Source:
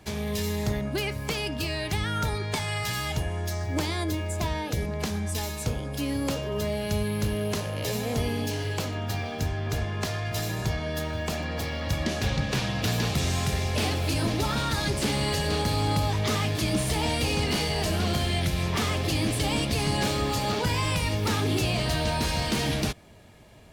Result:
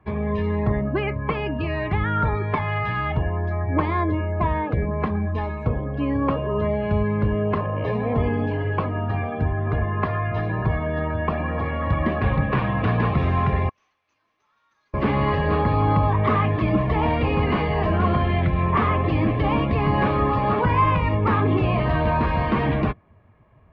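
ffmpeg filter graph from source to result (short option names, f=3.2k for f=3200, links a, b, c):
-filter_complex "[0:a]asettb=1/sr,asplit=3[a][b][c];[a]atrim=end=13.694[d];[b]atrim=start=13.69:end=14.94,asetpts=PTS-STARTPTS,afade=t=in:d=0.004:c=qsin,afade=t=out:st=1.246:d=0.004:c=qsin,bandpass=f=6.2k:t=q:w=8.8,acrusher=bits=3:mode=log:mix=0:aa=0.000001,asplit=2[e][f];[f]adelay=47,volume=-14dB[g];[e][g]amix=inputs=2:normalize=0,atrim=end_sample=55125[h];[c]atrim=start=14.936[i];[d][h]acrossfade=d=0.004:c1=hsin:c2=qsin[j];[j][i]acrossfade=d=0.004:c1=qsin:c2=hsin,afftdn=nr=13:nf=-37,lowpass=f=2.2k:w=0.5412,lowpass=f=2.2k:w=1.3066,equalizer=f=1.1k:w=7.5:g=15,volume=6dB"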